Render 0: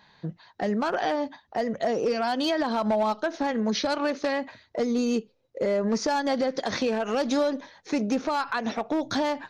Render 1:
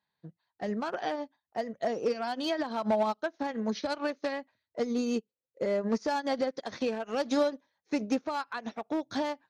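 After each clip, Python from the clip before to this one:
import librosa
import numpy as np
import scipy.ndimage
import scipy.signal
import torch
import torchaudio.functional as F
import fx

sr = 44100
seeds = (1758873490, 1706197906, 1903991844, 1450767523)

y = scipy.signal.sosfilt(scipy.signal.butter(2, 51.0, 'highpass', fs=sr, output='sos'), x)
y = fx.upward_expand(y, sr, threshold_db=-39.0, expansion=2.5)
y = y * librosa.db_to_amplitude(-1.0)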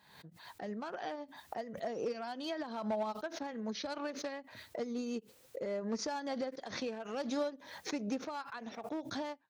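y = fx.pre_swell(x, sr, db_per_s=67.0)
y = y * librosa.db_to_amplitude(-8.5)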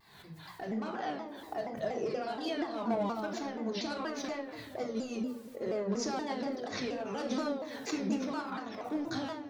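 y = fx.echo_stepped(x, sr, ms=430, hz=330.0, octaves=0.7, feedback_pct=70, wet_db=-11.5)
y = fx.room_shoebox(y, sr, seeds[0], volume_m3=2000.0, walls='furnished', distance_m=3.4)
y = fx.vibrato_shape(y, sr, shape='saw_down', rate_hz=4.2, depth_cents=160.0)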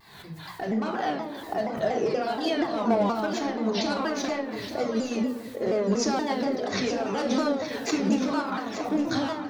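y = x + 10.0 ** (-10.5 / 20.0) * np.pad(x, (int(871 * sr / 1000.0), 0))[:len(x)]
y = y * librosa.db_to_amplitude(8.5)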